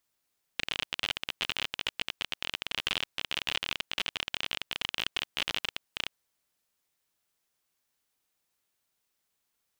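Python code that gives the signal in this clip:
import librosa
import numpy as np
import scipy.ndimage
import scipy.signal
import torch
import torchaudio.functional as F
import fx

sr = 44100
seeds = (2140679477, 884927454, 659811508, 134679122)

y = fx.geiger_clicks(sr, seeds[0], length_s=5.48, per_s=37.0, level_db=-13.5)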